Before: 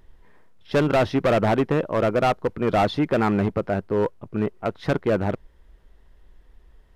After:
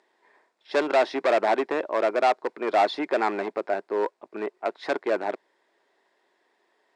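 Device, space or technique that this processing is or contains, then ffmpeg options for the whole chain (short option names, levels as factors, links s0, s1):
phone speaker on a table: -af "highpass=f=380:w=0.5412,highpass=f=380:w=1.3066,equalizer=f=490:t=q:w=4:g=-8,equalizer=f=1300:t=q:w=4:g=-6,equalizer=f=3000:t=q:w=4:g=-7,equalizer=f=6100:t=q:w=4:g=-5,lowpass=f=8000:w=0.5412,lowpass=f=8000:w=1.3066,volume=1.26"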